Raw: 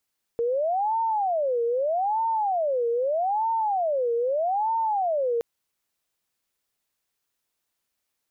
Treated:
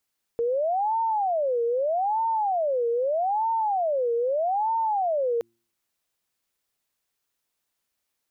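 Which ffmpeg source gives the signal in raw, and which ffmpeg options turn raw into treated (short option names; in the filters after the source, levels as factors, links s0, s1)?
-f lavfi -i "aevalsrc='0.0841*sin(2*PI*(687*t-221/(2*PI*0.8)*sin(2*PI*0.8*t)))':d=5.02:s=44100"
-af "bandreject=f=115.4:t=h:w=4,bandreject=f=230.8:t=h:w=4,bandreject=f=346.2:t=h:w=4"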